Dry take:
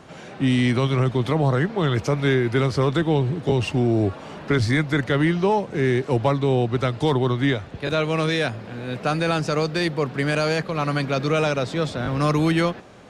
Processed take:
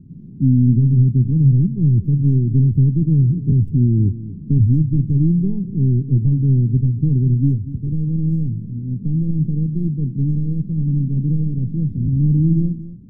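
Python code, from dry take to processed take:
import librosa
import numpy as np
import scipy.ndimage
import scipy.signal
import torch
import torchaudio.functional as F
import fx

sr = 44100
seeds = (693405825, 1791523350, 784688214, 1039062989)

y = fx.tracing_dist(x, sr, depth_ms=0.38)
y = scipy.signal.sosfilt(scipy.signal.cheby2(4, 50, 590.0, 'lowpass', fs=sr, output='sos'), y)
y = y + 10.0 ** (-15.0 / 20.0) * np.pad(y, (int(239 * sr / 1000.0), 0))[:len(y)]
y = y * 10.0 ** (9.0 / 20.0)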